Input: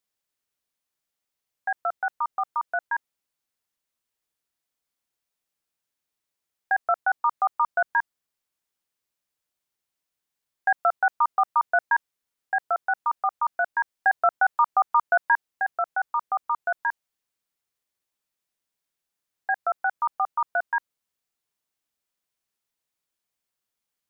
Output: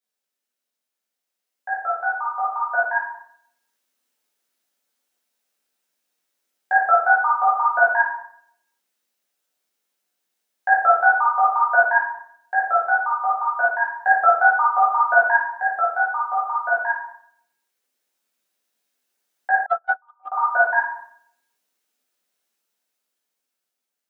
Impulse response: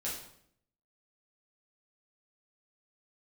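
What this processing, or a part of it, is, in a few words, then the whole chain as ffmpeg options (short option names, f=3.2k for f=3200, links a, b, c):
far laptop microphone: -filter_complex "[1:a]atrim=start_sample=2205[a];[0:a][a]afir=irnorm=-1:irlink=0,highpass=f=200:w=0.5412,highpass=f=200:w=1.3066,dynaudnorm=f=980:g=5:m=9.5dB,asettb=1/sr,asplit=3[b][c][d];[b]atrim=end=19.664[e];[c]atrim=start=19.66:end=20.32,asetpts=PTS-STARTPTS,afade=t=in:d=0.004:c=qsin,afade=t=out:st=0.656:d=0.004:c=qsin,agate=range=-39dB:threshold=-12dB:ratio=16:detection=peak[f];[d]atrim=start=20.316[g];[e][f]acrossfade=d=0.004:c1=hsin:c2=qsin[h];[h][g]acrossfade=d=0.004:c1=qsin:c2=hsin,volume=-1.5dB"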